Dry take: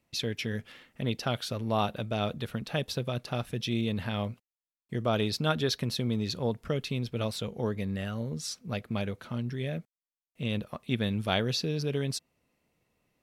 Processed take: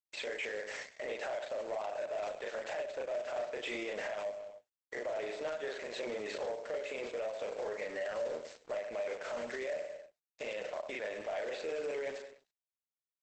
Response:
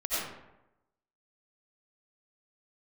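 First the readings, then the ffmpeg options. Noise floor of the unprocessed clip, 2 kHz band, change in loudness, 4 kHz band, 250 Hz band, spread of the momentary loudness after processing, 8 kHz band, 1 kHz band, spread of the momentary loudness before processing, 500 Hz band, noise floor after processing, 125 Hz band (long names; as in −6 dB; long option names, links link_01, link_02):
below −85 dBFS, −2.5 dB, −7.0 dB, −13.5 dB, −18.5 dB, 4 LU, −11.0 dB, −7.0 dB, 7 LU, −2.0 dB, below −85 dBFS, below −30 dB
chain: -filter_complex "[0:a]highpass=frequency=430:width=0.5412,highpass=frequency=430:width=1.3066,equalizer=frequency=600:width_type=q:width=4:gain=9,equalizer=frequency=1200:width_type=q:width=4:gain=-8,equalizer=frequency=2000:width_type=q:width=4:gain=6,lowpass=frequency=2200:width=0.5412,lowpass=frequency=2200:width=1.3066,aeval=exprs='sgn(val(0))*max(abs(val(0))-0.00133,0)':channel_layout=same,aecho=1:1:97|194|291:0.158|0.0555|0.0194,acompressor=threshold=-41dB:ratio=16,crystalizer=i=3.5:c=0,acrusher=bits=3:mode=log:mix=0:aa=0.000001,equalizer=frequency=800:width_type=o:width=2.1:gain=3.5,asplit=2[link_01][link_02];[link_02]adelay=38,volume=-2.5dB[link_03];[link_01][link_03]amix=inputs=2:normalize=0,asplit=2[link_04][link_05];[1:a]atrim=start_sample=2205,atrim=end_sample=3528[link_06];[link_05][link_06]afir=irnorm=-1:irlink=0,volume=-29dB[link_07];[link_04][link_07]amix=inputs=2:normalize=0,alimiter=level_in=10.5dB:limit=-24dB:level=0:latency=1:release=19,volume=-10.5dB,asoftclip=type=tanh:threshold=-38.5dB,volume=8.5dB" -ar 48000 -c:a libopus -b:a 12k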